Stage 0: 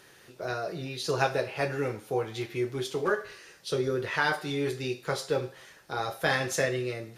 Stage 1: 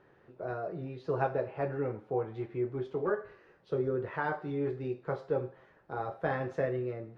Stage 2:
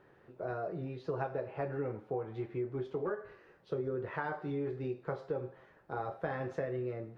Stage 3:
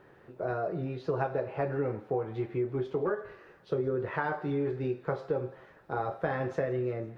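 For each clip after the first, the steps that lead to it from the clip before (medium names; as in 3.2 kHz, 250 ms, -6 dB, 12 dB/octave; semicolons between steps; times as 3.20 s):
low-pass 1.1 kHz 12 dB/octave; trim -2.5 dB
compression, threshold -32 dBFS, peak gain reduction 8 dB
thinning echo 167 ms, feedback 79%, high-pass 1.1 kHz, level -21 dB; trim +5.5 dB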